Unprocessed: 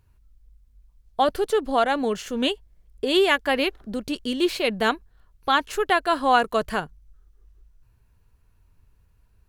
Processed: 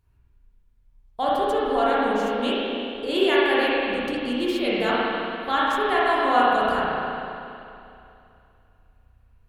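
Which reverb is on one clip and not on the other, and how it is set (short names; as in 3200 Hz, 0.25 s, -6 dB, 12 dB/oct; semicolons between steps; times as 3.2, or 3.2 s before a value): spring tank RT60 2.7 s, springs 33/49 ms, chirp 70 ms, DRR -8 dB; gain -7.5 dB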